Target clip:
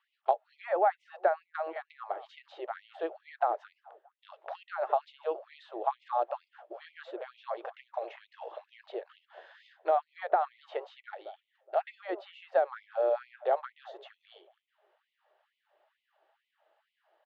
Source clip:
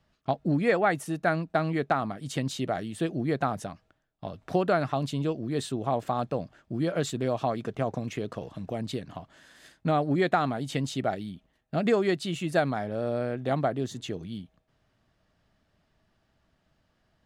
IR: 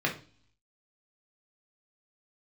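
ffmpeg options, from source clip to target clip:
-filter_complex "[0:a]acrossover=split=370|1500[s0][s1][s2];[s0]acompressor=threshold=0.00794:ratio=4[s3];[s1]acompressor=threshold=0.0355:ratio=4[s4];[s2]acompressor=threshold=0.00282:ratio=4[s5];[s3][s4][s5]amix=inputs=3:normalize=0,highpass=130,equalizer=f=580:t=q:w=4:g=7,equalizer=f=830:t=q:w=4:g=9,equalizer=f=2300:t=q:w=4:g=-3,lowpass=f=3300:w=0.5412,lowpass=f=3300:w=1.3066,asplit=2[s6][s7];[s7]adelay=209,lowpass=f=1100:p=1,volume=0.141,asplit=2[s8][s9];[s9]adelay=209,lowpass=f=1100:p=1,volume=0.52,asplit=2[s10][s11];[s11]adelay=209,lowpass=f=1100:p=1,volume=0.52,asplit=2[s12][s13];[s13]adelay=209,lowpass=f=1100:p=1,volume=0.52,asplit=2[s14][s15];[s15]adelay=209,lowpass=f=1100:p=1,volume=0.52[s16];[s8][s10][s12][s14][s16]amix=inputs=5:normalize=0[s17];[s6][s17]amix=inputs=2:normalize=0,afftfilt=real='re*gte(b*sr/1024,320*pow(2000/320,0.5+0.5*sin(2*PI*2.2*pts/sr)))':imag='im*gte(b*sr/1024,320*pow(2000/320,0.5+0.5*sin(2*PI*2.2*pts/sr)))':win_size=1024:overlap=0.75"

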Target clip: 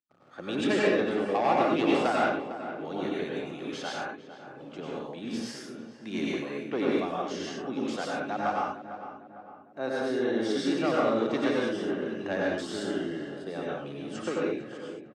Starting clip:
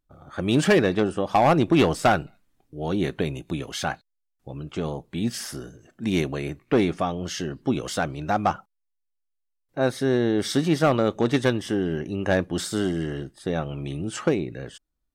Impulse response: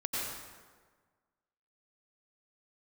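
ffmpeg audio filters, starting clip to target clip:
-filter_complex "[0:a]acrossover=split=380|1000[s0][s1][s2];[s1]aeval=exprs='val(0)*gte(abs(val(0)),0.00282)':c=same[s3];[s0][s3][s2]amix=inputs=3:normalize=0,highpass=260,lowpass=5900,asplit=2[s4][s5];[s5]adelay=453,lowpass=f=1800:p=1,volume=0.282,asplit=2[s6][s7];[s7]adelay=453,lowpass=f=1800:p=1,volume=0.5,asplit=2[s8][s9];[s9]adelay=453,lowpass=f=1800:p=1,volume=0.5,asplit=2[s10][s11];[s11]adelay=453,lowpass=f=1800:p=1,volume=0.5,asplit=2[s12][s13];[s13]adelay=453,lowpass=f=1800:p=1,volume=0.5[s14];[s4][s6][s8][s10][s12][s14]amix=inputs=6:normalize=0[s15];[1:a]atrim=start_sample=2205,afade=t=out:st=0.28:d=0.01,atrim=end_sample=12789[s16];[s15][s16]afir=irnorm=-1:irlink=0,volume=0.376"

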